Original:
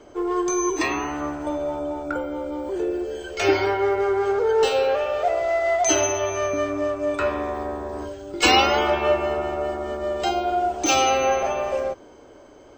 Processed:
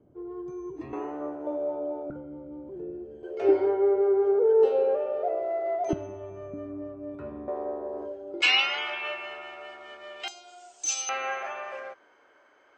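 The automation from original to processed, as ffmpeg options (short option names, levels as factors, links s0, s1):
-af "asetnsamples=n=441:p=0,asendcmd='0.93 bandpass f 470;2.1 bandpass f 160;3.23 bandpass f 420;5.93 bandpass f 170;7.48 bandpass f 500;8.42 bandpass f 2500;10.28 bandpass f 7400;11.09 bandpass f 1700',bandpass=f=140:t=q:w=2.1:csg=0"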